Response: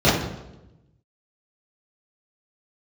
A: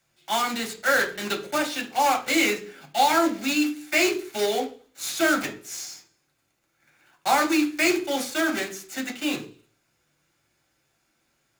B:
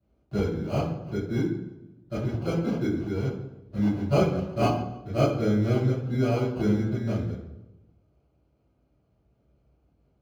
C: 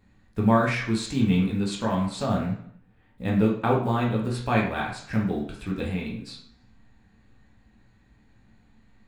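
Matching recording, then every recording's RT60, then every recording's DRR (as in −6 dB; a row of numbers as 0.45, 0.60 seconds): B; 0.40, 0.95, 0.65 seconds; 0.5, −12.5, −3.5 decibels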